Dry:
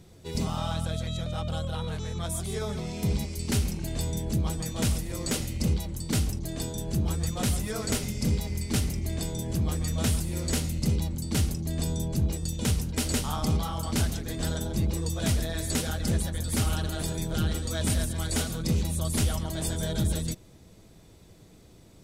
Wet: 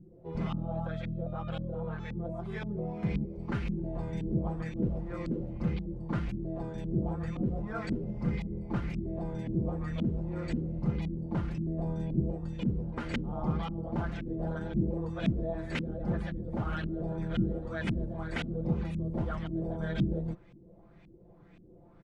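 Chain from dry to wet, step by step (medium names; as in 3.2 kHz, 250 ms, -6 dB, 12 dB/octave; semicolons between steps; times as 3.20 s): comb 5.8 ms, depth 64%; LFO low-pass saw up 1.9 Hz 240–2600 Hz; trim -5.5 dB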